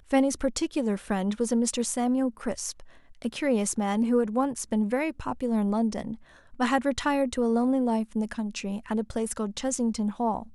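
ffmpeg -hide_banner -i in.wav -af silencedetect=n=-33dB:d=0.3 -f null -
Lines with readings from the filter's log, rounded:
silence_start: 2.80
silence_end: 3.22 | silence_duration: 0.42
silence_start: 6.15
silence_end: 6.60 | silence_duration: 0.45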